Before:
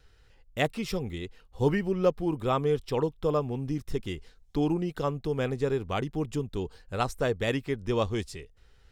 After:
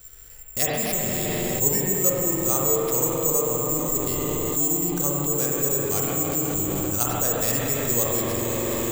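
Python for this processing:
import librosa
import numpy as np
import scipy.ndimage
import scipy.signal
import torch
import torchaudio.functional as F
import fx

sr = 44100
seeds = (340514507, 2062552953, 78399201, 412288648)

p1 = fx.echo_diffused(x, sr, ms=505, feedback_pct=59, wet_db=-12.0)
p2 = (np.kron(p1[::6], np.eye(6)[0]) * 6)[:len(p1)]
p3 = fx.rev_spring(p2, sr, rt60_s=4.0, pass_ms=(42, 51), chirp_ms=65, drr_db=-3.5)
p4 = fx.over_compress(p3, sr, threshold_db=-29.0, ratio=-1.0)
p5 = p3 + (p4 * librosa.db_to_amplitude(-0.5))
y = p5 * librosa.db_to_amplitude(-6.0)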